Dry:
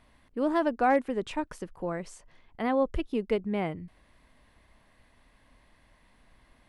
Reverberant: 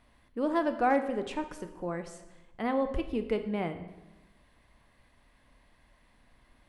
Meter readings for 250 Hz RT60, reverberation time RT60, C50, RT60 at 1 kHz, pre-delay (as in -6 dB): 1.2 s, 1.1 s, 10.5 dB, 1.0 s, 4 ms